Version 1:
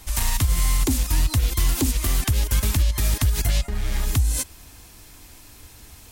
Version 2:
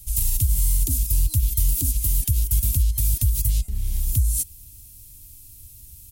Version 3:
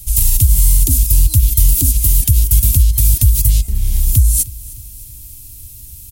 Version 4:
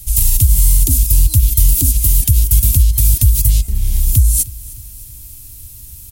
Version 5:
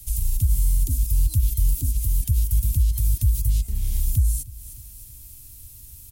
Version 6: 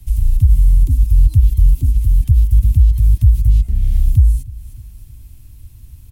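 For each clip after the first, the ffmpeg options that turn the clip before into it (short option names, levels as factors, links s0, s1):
-af "firequalizer=gain_entry='entry(120,0);entry(170,-7);entry(440,-21);entry(1500,-27);entry(2700,-12);entry(11000,6)':delay=0.05:min_phase=1"
-af "aecho=1:1:306|612|918|1224:0.0891|0.0472|0.025|0.0133,apsyclip=3.55,volume=0.841"
-af "acrusher=bits=8:mix=0:aa=0.000001"
-filter_complex "[0:a]acrossover=split=210[s0][s1];[s1]acompressor=threshold=0.0794:ratio=6[s2];[s0][s2]amix=inputs=2:normalize=0,volume=0.376"
-af "bass=f=250:g=6,treble=f=4000:g=-15,volume=1.5"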